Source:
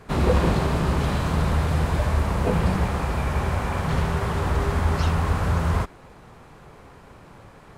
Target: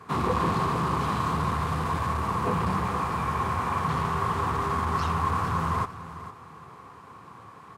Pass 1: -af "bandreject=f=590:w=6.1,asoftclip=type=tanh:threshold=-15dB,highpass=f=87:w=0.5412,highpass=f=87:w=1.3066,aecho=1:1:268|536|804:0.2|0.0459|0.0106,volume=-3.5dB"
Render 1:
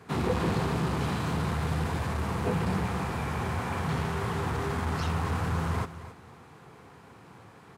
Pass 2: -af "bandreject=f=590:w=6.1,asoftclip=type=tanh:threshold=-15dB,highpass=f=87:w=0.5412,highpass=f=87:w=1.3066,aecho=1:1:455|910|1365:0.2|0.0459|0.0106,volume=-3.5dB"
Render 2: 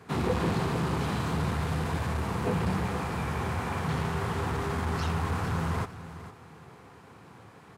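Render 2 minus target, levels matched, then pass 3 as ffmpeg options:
1000 Hz band -5.0 dB
-af "bandreject=f=590:w=6.1,asoftclip=type=tanh:threshold=-15dB,highpass=f=87:w=0.5412,highpass=f=87:w=1.3066,equalizer=f=1.1k:t=o:w=0.35:g=14,aecho=1:1:455|910|1365:0.2|0.0459|0.0106,volume=-3.5dB"

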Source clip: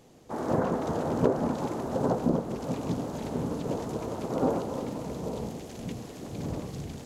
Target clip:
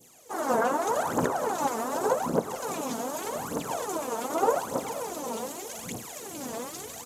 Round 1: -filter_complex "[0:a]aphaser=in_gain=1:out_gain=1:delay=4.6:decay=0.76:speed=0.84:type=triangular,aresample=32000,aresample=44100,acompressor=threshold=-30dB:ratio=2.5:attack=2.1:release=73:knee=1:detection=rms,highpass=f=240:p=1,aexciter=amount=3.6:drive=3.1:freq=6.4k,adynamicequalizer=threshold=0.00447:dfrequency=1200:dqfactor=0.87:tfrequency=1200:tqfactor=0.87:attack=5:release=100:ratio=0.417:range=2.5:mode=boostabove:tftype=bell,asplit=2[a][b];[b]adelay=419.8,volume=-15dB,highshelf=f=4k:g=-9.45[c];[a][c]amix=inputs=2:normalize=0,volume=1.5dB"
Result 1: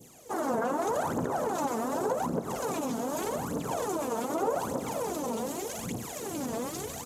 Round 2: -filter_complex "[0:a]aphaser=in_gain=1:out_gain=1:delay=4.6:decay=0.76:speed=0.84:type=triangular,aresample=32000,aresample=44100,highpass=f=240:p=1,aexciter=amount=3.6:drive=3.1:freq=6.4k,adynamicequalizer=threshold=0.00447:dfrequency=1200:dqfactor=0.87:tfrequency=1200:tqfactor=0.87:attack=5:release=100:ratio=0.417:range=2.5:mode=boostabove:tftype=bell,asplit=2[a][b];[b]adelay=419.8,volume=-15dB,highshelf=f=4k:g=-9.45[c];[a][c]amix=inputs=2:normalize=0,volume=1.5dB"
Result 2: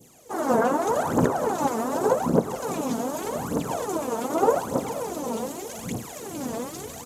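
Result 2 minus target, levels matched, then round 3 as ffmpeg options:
250 Hz band +3.5 dB
-filter_complex "[0:a]aphaser=in_gain=1:out_gain=1:delay=4.6:decay=0.76:speed=0.84:type=triangular,aresample=32000,aresample=44100,highpass=f=770:p=1,aexciter=amount=3.6:drive=3.1:freq=6.4k,adynamicequalizer=threshold=0.00447:dfrequency=1200:dqfactor=0.87:tfrequency=1200:tqfactor=0.87:attack=5:release=100:ratio=0.417:range=2.5:mode=boostabove:tftype=bell,asplit=2[a][b];[b]adelay=419.8,volume=-15dB,highshelf=f=4k:g=-9.45[c];[a][c]amix=inputs=2:normalize=0,volume=1.5dB"

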